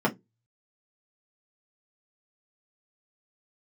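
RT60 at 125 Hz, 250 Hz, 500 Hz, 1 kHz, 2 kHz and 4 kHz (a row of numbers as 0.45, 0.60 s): 0.40, 0.25, 0.20, 0.15, 0.10, 0.10 s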